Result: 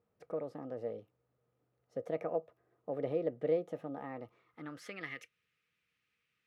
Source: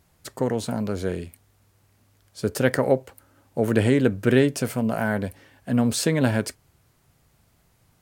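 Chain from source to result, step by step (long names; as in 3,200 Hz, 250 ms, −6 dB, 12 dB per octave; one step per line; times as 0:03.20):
high-shelf EQ 3,200 Hz −11.5 dB
in parallel at −2 dB: downward compressor, threshold −28 dBFS, peak gain reduction 14.5 dB
on the sum: band-pass filter sweep 580 Hz → 1,900 Hz, 0:05.00–0:06.56
guitar amp tone stack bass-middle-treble 6-0-2
hollow resonant body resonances 380/1,000 Hz, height 12 dB, ringing for 55 ms
change of speed 1.24×
level +11 dB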